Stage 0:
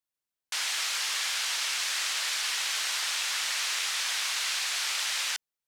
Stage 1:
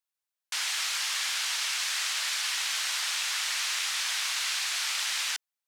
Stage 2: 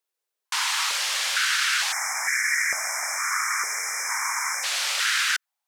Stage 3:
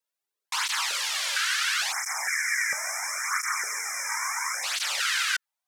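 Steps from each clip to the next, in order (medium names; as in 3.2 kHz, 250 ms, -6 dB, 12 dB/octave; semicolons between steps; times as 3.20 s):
high-pass 660 Hz 12 dB/octave
spectral selection erased 1.92–4.64 s, 2.4–5.1 kHz; step-sequenced high-pass 2.2 Hz 420–1800 Hz; trim +4 dB
cancelling through-zero flanger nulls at 0.73 Hz, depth 2.9 ms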